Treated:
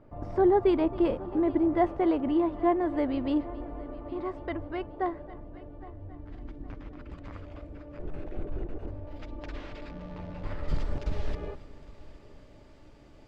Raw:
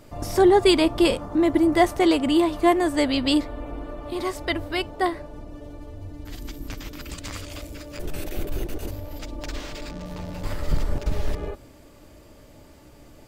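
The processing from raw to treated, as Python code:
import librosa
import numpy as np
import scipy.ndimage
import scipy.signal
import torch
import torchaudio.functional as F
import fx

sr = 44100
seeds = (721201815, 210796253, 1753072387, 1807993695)

y = fx.lowpass(x, sr, hz=fx.steps((0.0, 1300.0), (9.07, 2500.0), (10.68, 4700.0)), slope=12)
y = fx.echo_heads(y, sr, ms=271, heads='first and third', feedback_pct=48, wet_db=-20.0)
y = y * librosa.db_to_amplitude(-6.0)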